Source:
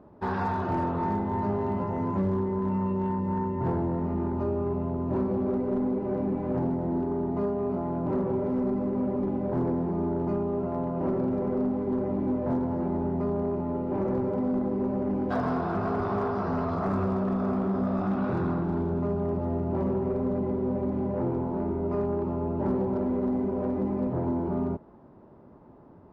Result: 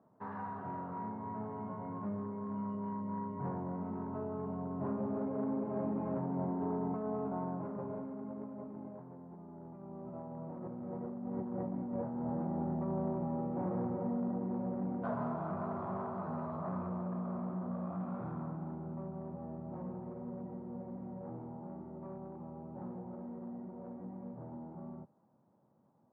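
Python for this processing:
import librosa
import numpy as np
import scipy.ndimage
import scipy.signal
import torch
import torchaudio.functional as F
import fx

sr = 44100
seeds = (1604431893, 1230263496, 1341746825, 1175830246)

y = fx.doppler_pass(x, sr, speed_mps=20, closest_m=11.0, pass_at_s=9.42)
y = scipy.signal.sosfilt(scipy.signal.butter(4, 120.0, 'highpass', fs=sr, output='sos'), y)
y = fx.peak_eq(y, sr, hz=360.0, db=-9.0, octaves=0.85)
y = fx.over_compress(y, sr, threshold_db=-48.0, ratio=-1.0)
y = scipy.signal.sosfilt(scipy.signal.butter(2, 1400.0, 'lowpass', fs=sr, output='sos'), y)
y = y * librosa.db_to_amplitude(9.0)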